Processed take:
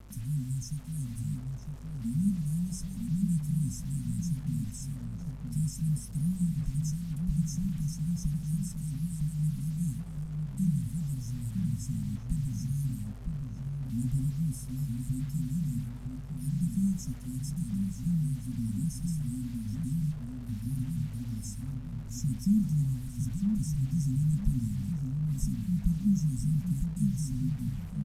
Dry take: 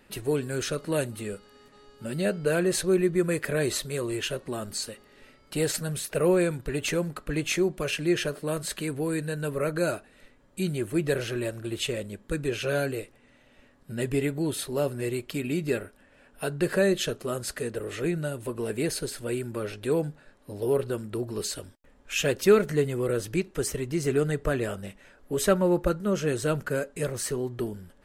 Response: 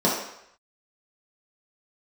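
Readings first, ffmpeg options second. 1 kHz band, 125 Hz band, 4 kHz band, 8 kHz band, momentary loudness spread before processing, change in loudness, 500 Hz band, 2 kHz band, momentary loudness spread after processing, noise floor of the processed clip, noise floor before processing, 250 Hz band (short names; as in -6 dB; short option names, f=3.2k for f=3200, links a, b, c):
under -20 dB, +4.5 dB, -17.5 dB, -9.0 dB, 10 LU, -4.0 dB, under -35 dB, under -25 dB, 8 LU, -41 dBFS, -59 dBFS, -1.0 dB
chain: -filter_complex "[0:a]bandreject=f=61.46:t=h:w=4,bandreject=f=122.92:t=h:w=4,bandreject=f=184.38:t=h:w=4,bandreject=f=245.84:t=h:w=4,bandreject=f=307.3:t=h:w=4,bandreject=f=368.76:t=h:w=4,bandreject=f=430.22:t=h:w=4,bandreject=f=491.68:t=h:w=4,bandreject=f=553.14:t=h:w=4,bandreject=f=614.6:t=h:w=4,bandreject=f=676.06:t=h:w=4,bandreject=f=737.52:t=h:w=4,bandreject=f=798.98:t=h:w=4,bandreject=f=860.44:t=h:w=4,bandreject=f=921.9:t=h:w=4,bandreject=f=983.36:t=h:w=4,bandreject=f=1.04482k:t=h:w=4,bandreject=f=1.10628k:t=h:w=4,bandreject=f=1.16774k:t=h:w=4,bandreject=f=1.2292k:t=h:w=4,bandreject=f=1.29066k:t=h:w=4,afftfilt=real='re*(1-between(b*sr/4096,260,5200))':imag='im*(1-between(b*sr/4096,260,5200))':win_size=4096:overlap=0.75,highshelf=f=2.8k:g=-10,acrossover=split=280|5500[a][b][c];[c]alimiter=level_in=16dB:limit=-24dB:level=0:latency=1:release=113,volume=-16dB[d];[a][b][d]amix=inputs=3:normalize=0,acrossover=split=400|3000[e][f][g];[f]acompressor=threshold=-46dB:ratio=2[h];[e][h][g]amix=inputs=3:normalize=0,flanger=delay=0.2:depth=2.5:regen=-46:speed=0.49:shape=sinusoidal,aeval=exprs='val(0)+0.00178*(sin(2*PI*50*n/s)+sin(2*PI*2*50*n/s)/2+sin(2*PI*3*50*n/s)/3+sin(2*PI*4*50*n/s)/4+sin(2*PI*5*50*n/s)/5)':c=same,acrusher=bits=9:mix=0:aa=0.000001,asplit=2[i][j];[j]adelay=959,lowpass=f=1.3k:p=1,volume=-4dB,asplit=2[k][l];[l]adelay=959,lowpass=f=1.3k:p=1,volume=0.37,asplit=2[m][n];[n]adelay=959,lowpass=f=1.3k:p=1,volume=0.37,asplit=2[o][p];[p]adelay=959,lowpass=f=1.3k:p=1,volume=0.37,asplit=2[q][r];[r]adelay=959,lowpass=f=1.3k:p=1,volume=0.37[s];[i][k][m][o][q][s]amix=inputs=6:normalize=0,aresample=32000,aresample=44100,volume=6.5dB"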